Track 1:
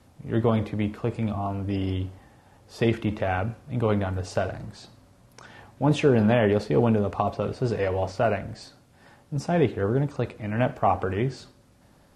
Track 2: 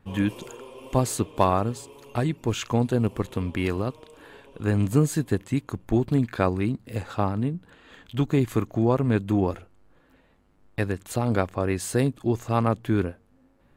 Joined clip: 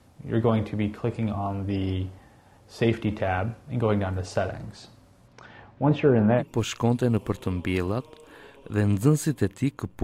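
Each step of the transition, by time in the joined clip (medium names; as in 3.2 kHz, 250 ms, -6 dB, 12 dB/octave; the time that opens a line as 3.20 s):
track 1
5.27–6.43 s: low-pass 4.9 kHz -> 1.5 kHz
6.40 s: go over to track 2 from 2.30 s, crossfade 0.06 s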